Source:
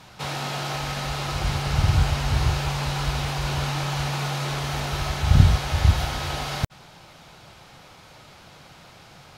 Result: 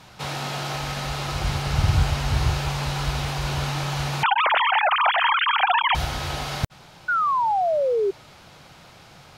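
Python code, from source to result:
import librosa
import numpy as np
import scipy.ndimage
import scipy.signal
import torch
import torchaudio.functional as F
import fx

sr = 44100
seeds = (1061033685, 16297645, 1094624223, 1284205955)

y = fx.sine_speech(x, sr, at=(4.23, 5.95))
y = fx.spec_paint(y, sr, seeds[0], shape='fall', start_s=7.08, length_s=1.03, low_hz=380.0, high_hz=1500.0, level_db=-21.0)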